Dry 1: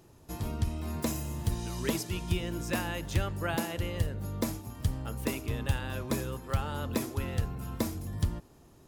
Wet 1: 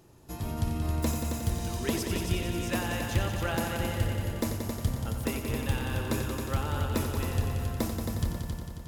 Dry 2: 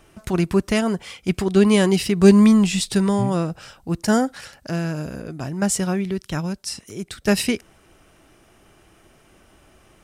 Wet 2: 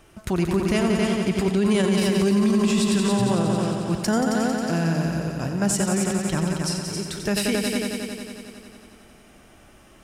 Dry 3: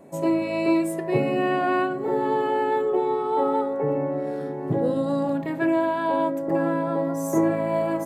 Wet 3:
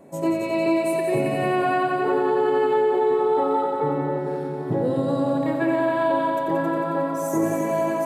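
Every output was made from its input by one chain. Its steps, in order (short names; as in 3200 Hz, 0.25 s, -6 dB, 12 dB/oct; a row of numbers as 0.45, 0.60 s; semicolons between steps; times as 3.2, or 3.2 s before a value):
on a send: multi-head echo 90 ms, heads all three, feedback 61%, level -9 dB; on the sum: limiter -12.5 dBFS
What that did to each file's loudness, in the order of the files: +2.5, -2.5, +1.5 LU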